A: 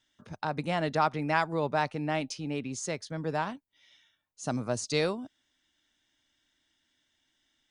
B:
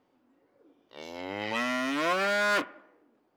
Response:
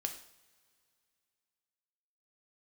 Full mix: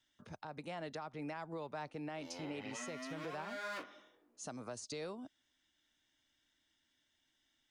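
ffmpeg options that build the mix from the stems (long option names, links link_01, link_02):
-filter_complex "[0:a]acrossover=split=290|1000[link_01][link_02][link_03];[link_01]acompressor=threshold=-46dB:ratio=4[link_04];[link_02]acompressor=threshold=-35dB:ratio=4[link_05];[link_03]acompressor=threshold=-40dB:ratio=4[link_06];[link_04][link_05][link_06]amix=inputs=3:normalize=0,volume=-4.5dB,asplit=2[link_07][link_08];[1:a]alimiter=level_in=2dB:limit=-24dB:level=0:latency=1:release=87,volume=-2dB,flanger=delay=15.5:depth=4.3:speed=0.91,adelay=1200,volume=-5.5dB[link_09];[link_08]apad=whole_len=201096[link_10];[link_09][link_10]sidechaincompress=threshold=-39dB:ratio=8:attack=16:release=305[link_11];[link_07][link_11]amix=inputs=2:normalize=0,alimiter=level_in=10.5dB:limit=-24dB:level=0:latency=1:release=195,volume=-10.5dB"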